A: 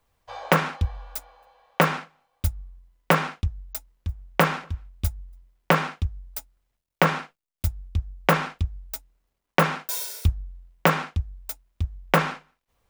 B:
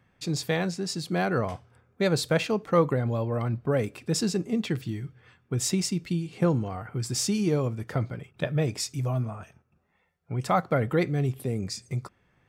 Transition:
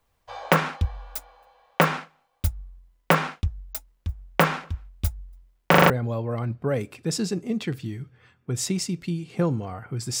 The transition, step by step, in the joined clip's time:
A
5.70 s: stutter in place 0.04 s, 5 plays
5.90 s: go over to B from 2.93 s

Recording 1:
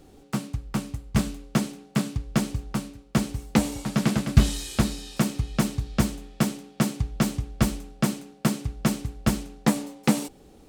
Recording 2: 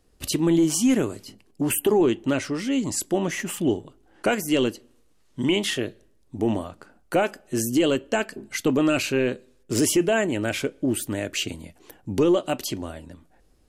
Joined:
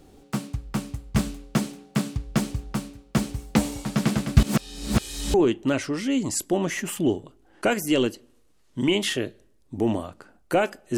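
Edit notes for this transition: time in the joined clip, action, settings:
recording 1
4.43–5.34 s: reverse
5.34 s: go over to recording 2 from 1.95 s

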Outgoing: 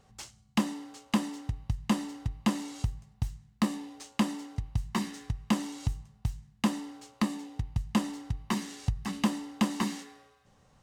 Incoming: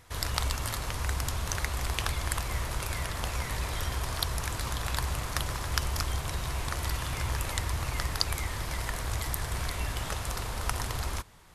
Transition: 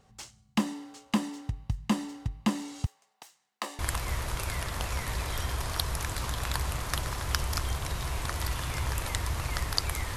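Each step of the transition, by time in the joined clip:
outgoing
2.86–3.79 s: high-pass 440 Hz 24 dB/octave
3.79 s: go over to incoming from 2.22 s

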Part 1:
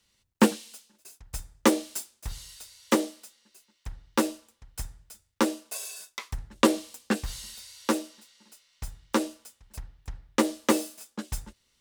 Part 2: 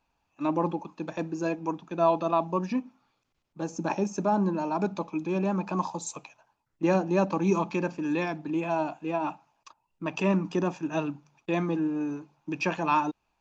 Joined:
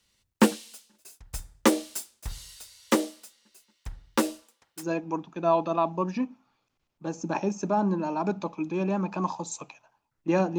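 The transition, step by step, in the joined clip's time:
part 1
4.42–4.88 s: high-pass 250 Hz -> 690 Hz
4.82 s: go over to part 2 from 1.37 s, crossfade 0.12 s

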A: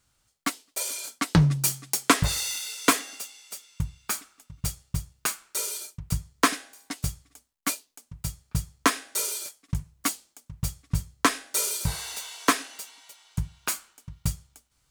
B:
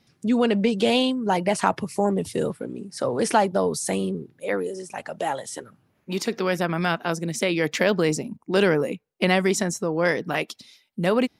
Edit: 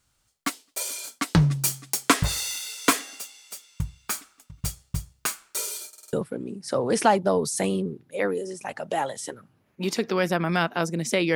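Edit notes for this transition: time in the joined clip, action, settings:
A
5.88 s: stutter in place 0.05 s, 5 plays
6.13 s: go over to B from 2.42 s

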